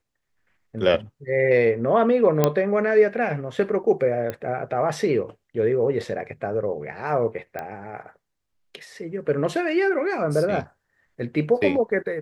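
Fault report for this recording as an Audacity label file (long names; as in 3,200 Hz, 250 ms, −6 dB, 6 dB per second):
2.440000	2.440000	click −4 dBFS
4.300000	4.300000	click −16 dBFS
7.590000	7.590000	click −18 dBFS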